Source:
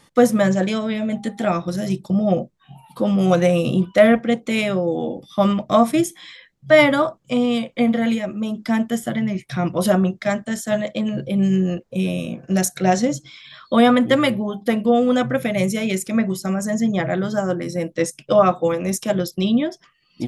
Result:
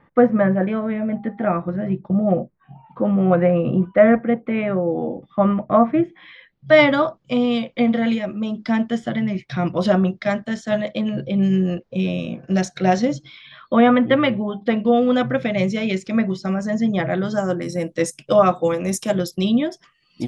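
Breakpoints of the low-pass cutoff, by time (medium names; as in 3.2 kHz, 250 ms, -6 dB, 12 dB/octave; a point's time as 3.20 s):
low-pass 24 dB/octave
6.05 s 2 kHz
6.74 s 5.2 kHz
13.16 s 5.2 kHz
13.75 s 2.7 kHz
15.27 s 5.1 kHz
17.09 s 5.1 kHz
17.76 s 11 kHz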